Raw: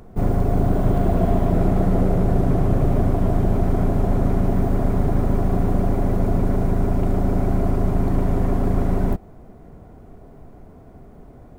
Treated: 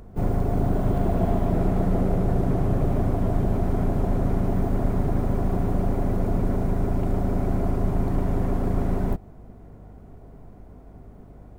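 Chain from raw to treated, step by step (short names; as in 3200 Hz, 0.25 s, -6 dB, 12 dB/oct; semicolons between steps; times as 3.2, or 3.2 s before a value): hum 50 Hz, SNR 25 dB; harmoniser +4 st -15 dB; gain -4 dB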